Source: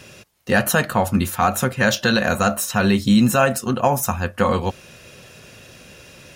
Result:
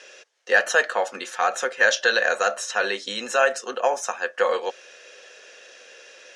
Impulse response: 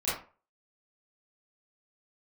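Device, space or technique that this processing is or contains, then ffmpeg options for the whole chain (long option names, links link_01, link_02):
phone speaker on a table: -af "highpass=frequency=430:width=0.5412,highpass=frequency=430:width=1.3066,equalizer=frequency=480:width_type=q:width=4:gain=6,equalizer=frequency=1000:width_type=q:width=4:gain=-3,equalizer=frequency=1700:width_type=q:width=4:gain=8,equalizer=frequency=3200:width_type=q:width=4:gain=3,equalizer=frequency=6000:width_type=q:width=4:gain=5,lowpass=frequency=7500:width=0.5412,lowpass=frequency=7500:width=1.3066,volume=-4dB"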